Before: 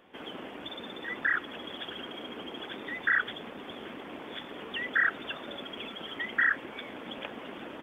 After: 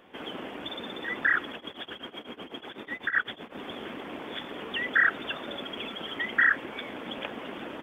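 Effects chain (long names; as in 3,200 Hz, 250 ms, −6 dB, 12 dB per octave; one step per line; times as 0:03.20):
0:01.52–0:03.55: shaped tremolo triangle 8 Hz, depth 95%
level +3.5 dB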